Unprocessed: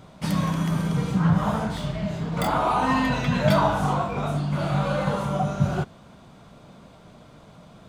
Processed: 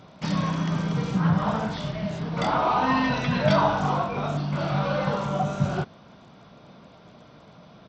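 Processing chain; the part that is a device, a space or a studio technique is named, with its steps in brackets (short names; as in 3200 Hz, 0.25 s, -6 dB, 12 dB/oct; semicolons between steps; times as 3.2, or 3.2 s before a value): Bluetooth headset (HPF 120 Hz 6 dB/oct; downsampling 16000 Hz; SBC 64 kbps 32000 Hz)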